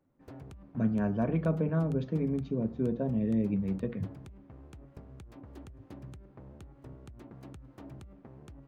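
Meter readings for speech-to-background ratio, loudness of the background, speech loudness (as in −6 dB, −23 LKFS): 19.0 dB, −50.0 LKFS, −31.0 LKFS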